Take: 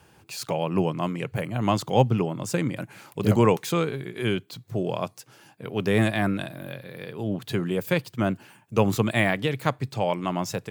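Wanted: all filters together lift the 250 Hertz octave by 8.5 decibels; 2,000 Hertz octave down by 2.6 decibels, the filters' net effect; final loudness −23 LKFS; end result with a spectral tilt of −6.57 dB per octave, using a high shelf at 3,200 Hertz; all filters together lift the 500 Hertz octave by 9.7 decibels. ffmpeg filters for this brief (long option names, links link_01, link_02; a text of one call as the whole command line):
ffmpeg -i in.wav -af "equalizer=frequency=250:width_type=o:gain=9,equalizer=frequency=500:width_type=o:gain=9,equalizer=frequency=2000:width_type=o:gain=-5.5,highshelf=frequency=3200:gain=5,volume=-4.5dB" out.wav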